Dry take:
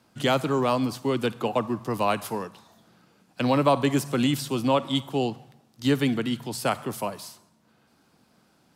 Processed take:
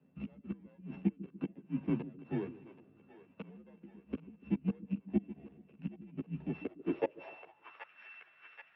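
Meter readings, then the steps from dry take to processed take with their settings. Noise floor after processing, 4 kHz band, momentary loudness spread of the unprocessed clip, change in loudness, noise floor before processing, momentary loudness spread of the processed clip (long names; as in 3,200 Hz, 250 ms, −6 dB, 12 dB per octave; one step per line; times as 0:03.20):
−66 dBFS, below −30 dB, 10 LU, −14.0 dB, −64 dBFS, 19 LU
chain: samples sorted by size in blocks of 16 samples
high-shelf EQ 2,200 Hz +11.5 dB
gate with flip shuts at −7 dBFS, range −32 dB
single-sideband voice off tune −76 Hz 180–3,500 Hz
multi-voice chorus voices 6, 0.26 Hz, delay 13 ms, depth 2.3 ms
echo with a time of its own for lows and highs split 410 Hz, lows 144 ms, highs 779 ms, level −15 dB
band-pass filter sweep 220 Hz → 1,600 Hz, 0:06.54–0:07.97
level +7 dB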